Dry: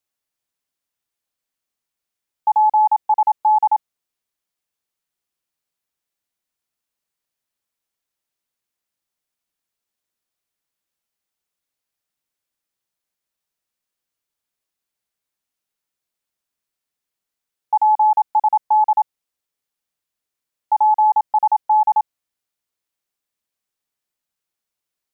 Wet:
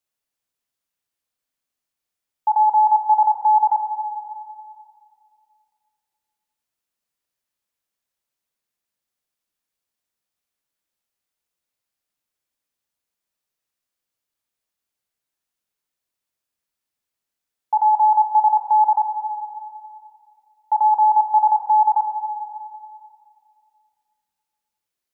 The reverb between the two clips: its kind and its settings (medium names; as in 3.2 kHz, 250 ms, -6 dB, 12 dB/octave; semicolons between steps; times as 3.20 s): plate-style reverb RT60 2.4 s, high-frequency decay 0.75×, DRR 4 dB; trim -2 dB